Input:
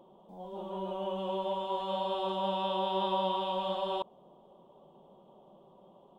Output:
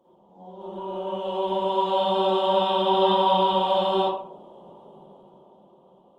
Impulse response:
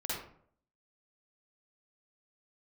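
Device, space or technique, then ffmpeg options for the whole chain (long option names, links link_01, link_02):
far-field microphone of a smart speaker: -filter_complex "[1:a]atrim=start_sample=2205[link_01];[0:a][link_01]afir=irnorm=-1:irlink=0,highpass=110,dynaudnorm=framelen=310:gausssize=9:maxgain=11dB,volume=-2.5dB" -ar 48000 -c:a libopus -b:a 24k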